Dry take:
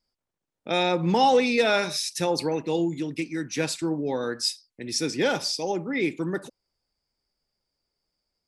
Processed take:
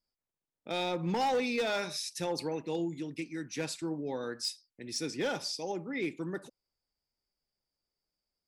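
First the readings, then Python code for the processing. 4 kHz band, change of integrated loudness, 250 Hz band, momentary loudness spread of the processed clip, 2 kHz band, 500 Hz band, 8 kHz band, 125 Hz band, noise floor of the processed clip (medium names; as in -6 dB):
-9.0 dB, -9.0 dB, -9.0 dB, 9 LU, -9.0 dB, -9.5 dB, -8.5 dB, -8.5 dB, under -85 dBFS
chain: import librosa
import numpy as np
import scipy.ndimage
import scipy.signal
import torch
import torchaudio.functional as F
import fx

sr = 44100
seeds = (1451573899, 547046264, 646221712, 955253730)

y = np.clip(x, -10.0 ** (-17.0 / 20.0), 10.0 ** (-17.0 / 20.0))
y = F.gain(torch.from_numpy(y), -8.5).numpy()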